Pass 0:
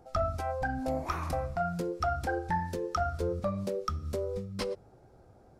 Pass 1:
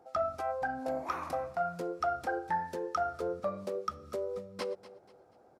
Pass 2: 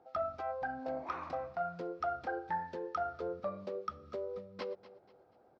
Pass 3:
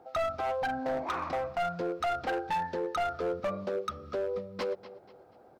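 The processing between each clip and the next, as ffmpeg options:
-af "highpass=f=350:p=1,equalizer=f=670:w=0.31:g=7,aecho=1:1:242|484|726:0.141|0.0509|0.0183,volume=0.473"
-af "lowpass=f=4700:w=0.5412,lowpass=f=4700:w=1.3066,volume=0.631"
-af "asoftclip=type=hard:threshold=0.0168,volume=2.66"

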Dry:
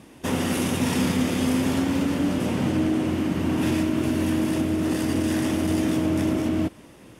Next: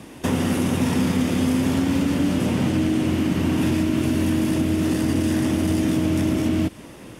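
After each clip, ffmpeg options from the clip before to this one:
-filter_complex "[0:a]acrossover=split=270|1900[s0][s1][s2];[s0]acompressor=threshold=0.0447:ratio=4[s3];[s1]acompressor=threshold=0.02:ratio=4[s4];[s2]acompressor=threshold=0.00794:ratio=4[s5];[s3][s4][s5]amix=inputs=3:normalize=0,volume=2.24"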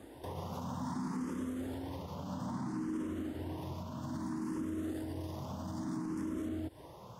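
-filter_complex "[0:a]equalizer=f=1000:t=o:w=0.67:g=10,equalizer=f=2500:t=o:w=0.67:g=-12,equalizer=f=10000:t=o:w=0.67:g=-5,alimiter=limit=0.0944:level=0:latency=1:release=119,asplit=2[s0][s1];[s1]afreqshift=0.61[s2];[s0][s2]amix=inputs=2:normalize=1,volume=0.398"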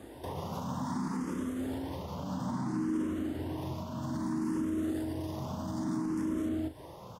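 -filter_complex "[0:a]asplit=2[s0][s1];[s1]adelay=38,volume=0.355[s2];[s0][s2]amix=inputs=2:normalize=0,volume=1.5"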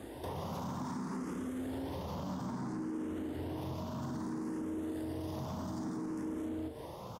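-filter_complex "[0:a]acompressor=threshold=0.0158:ratio=6,asoftclip=type=tanh:threshold=0.0188,asplit=2[s0][s1];[s1]asplit=4[s2][s3][s4][s5];[s2]adelay=162,afreqshift=140,volume=0.237[s6];[s3]adelay=324,afreqshift=280,volume=0.0881[s7];[s4]adelay=486,afreqshift=420,volume=0.0324[s8];[s5]adelay=648,afreqshift=560,volume=0.012[s9];[s6][s7][s8][s9]amix=inputs=4:normalize=0[s10];[s0][s10]amix=inputs=2:normalize=0,volume=1.26"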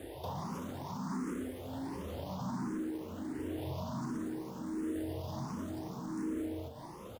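-filter_complex "[0:a]acrusher=bits=6:mode=log:mix=0:aa=0.000001,asplit=2[s0][s1];[s1]afreqshift=1.4[s2];[s0][s2]amix=inputs=2:normalize=1,volume=1.41"

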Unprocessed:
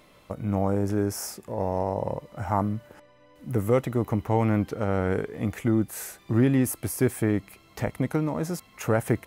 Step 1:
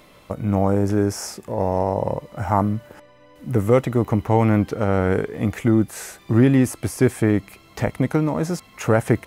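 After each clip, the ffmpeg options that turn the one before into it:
-filter_complex "[0:a]acrossover=split=9100[s0][s1];[s1]acompressor=threshold=0.00224:ratio=4:attack=1:release=60[s2];[s0][s2]amix=inputs=2:normalize=0,volume=2"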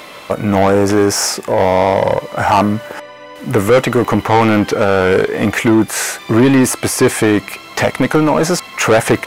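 -filter_complex "[0:a]asplit=2[s0][s1];[s1]highpass=f=720:p=1,volume=15.8,asoftclip=type=tanh:threshold=0.75[s2];[s0][s2]amix=inputs=2:normalize=0,lowpass=f=6200:p=1,volume=0.501,volume=1.19"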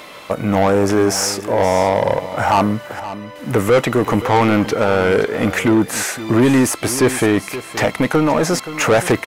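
-af "aecho=1:1:524:0.2,volume=0.708"

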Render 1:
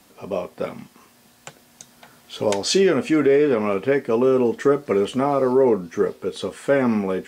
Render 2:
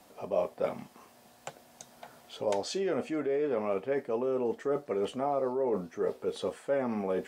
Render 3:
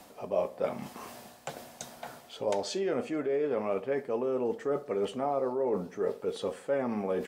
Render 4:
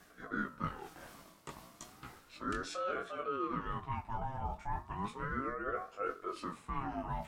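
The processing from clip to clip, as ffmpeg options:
-af "areverse,acompressor=threshold=0.0562:ratio=6,areverse,equalizer=f=670:t=o:w=1.1:g=9.5,volume=0.447"
-filter_complex "[0:a]areverse,acompressor=mode=upward:threshold=0.0224:ratio=2.5,areverse,asplit=2[s0][s1];[s1]adelay=65,lowpass=f=2000:p=1,volume=0.15,asplit=2[s2][s3];[s3]adelay=65,lowpass=f=2000:p=1,volume=0.53,asplit=2[s4][s5];[s5]adelay=65,lowpass=f=2000:p=1,volume=0.53,asplit=2[s6][s7];[s7]adelay=65,lowpass=f=2000:p=1,volume=0.53,asplit=2[s8][s9];[s9]adelay=65,lowpass=f=2000:p=1,volume=0.53[s10];[s0][s2][s4][s6][s8][s10]amix=inputs=6:normalize=0"
-af "flanger=delay=16:depth=7.5:speed=0.54,aeval=exprs='val(0)*sin(2*PI*660*n/s+660*0.4/0.34*sin(2*PI*0.34*n/s))':c=same,volume=0.794"

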